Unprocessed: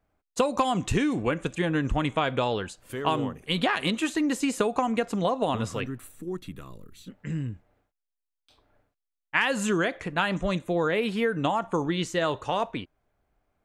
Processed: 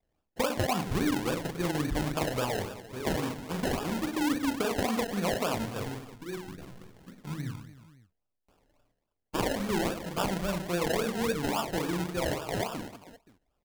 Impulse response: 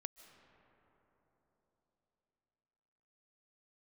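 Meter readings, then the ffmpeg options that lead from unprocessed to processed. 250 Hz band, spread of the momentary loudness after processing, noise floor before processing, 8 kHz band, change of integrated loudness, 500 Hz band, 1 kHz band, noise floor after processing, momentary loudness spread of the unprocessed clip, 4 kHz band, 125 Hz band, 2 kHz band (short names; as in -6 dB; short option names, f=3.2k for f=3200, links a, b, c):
-3.5 dB, 12 LU, -85 dBFS, 0.0 dB, -4.0 dB, -4.0 dB, -5.5 dB, -82 dBFS, 12 LU, -4.0 dB, -3.0 dB, -6.5 dB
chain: -filter_complex "[0:a]acrossover=split=2900[a][b];[b]acompressor=threshold=-49dB:ratio=4:attack=1:release=60[c];[a][c]amix=inputs=2:normalize=0,aecho=1:1:40|100|190|325|527.5:0.631|0.398|0.251|0.158|0.1,acrusher=samples=30:mix=1:aa=0.000001:lfo=1:lforange=18:lforate=3.6,volume=-6dB"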